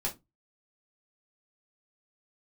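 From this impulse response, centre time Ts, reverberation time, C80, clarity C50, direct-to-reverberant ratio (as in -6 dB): 14 ms, 0.20 s, 25.5 dB, 15.0 dB, -3.5 dB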